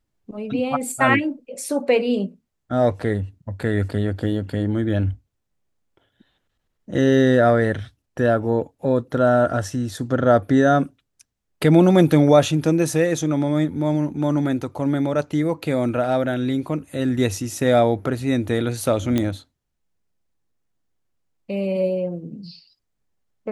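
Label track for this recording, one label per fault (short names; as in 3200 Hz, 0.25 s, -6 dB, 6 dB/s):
19.180000	19.180000	pop -9 dBFS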